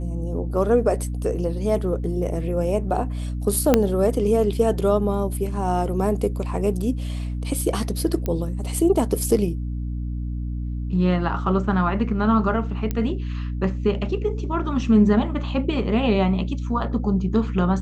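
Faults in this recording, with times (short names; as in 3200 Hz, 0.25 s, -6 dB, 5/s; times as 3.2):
hum 60 Hz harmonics 5 -27 dBFS
3.74 pop -2 dBFS
8.26 pop -13 dBFS
12.91 pop -12 dBFS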